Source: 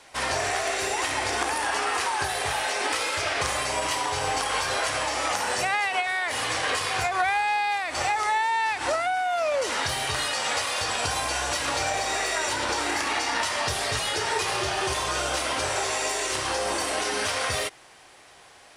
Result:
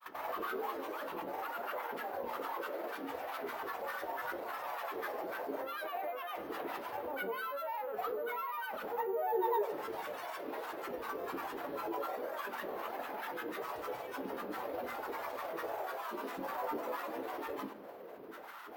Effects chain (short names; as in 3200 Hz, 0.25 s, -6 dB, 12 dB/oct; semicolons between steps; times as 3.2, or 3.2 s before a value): reverse; compressor, threshold -34 dBFS, peak gain reduction 13.5 dB; reverse; limiter -33.5 dBFS, peak gain reduction 11.5 dB; band-pass 630 Hz, Q 1.8; grains, pitch spread up and down by 12 st; careless resampling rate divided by 3×, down none, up hold; on a send: reverb RT60 0.85 s, pre-delay 13 ms, DRR 8.5 dB; on the sum: gain +9 dB